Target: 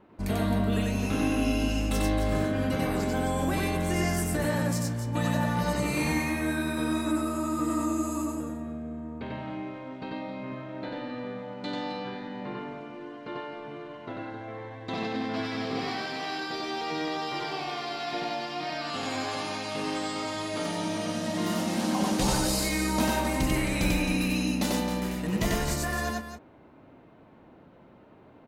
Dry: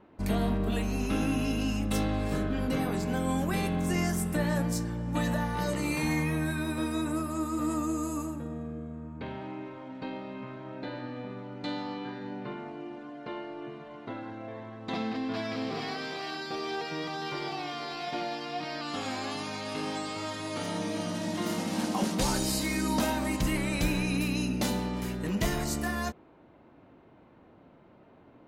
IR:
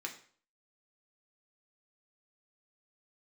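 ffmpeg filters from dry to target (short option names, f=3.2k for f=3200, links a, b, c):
-af "aecho=1:1:93.29|265.3:0.891|0.355"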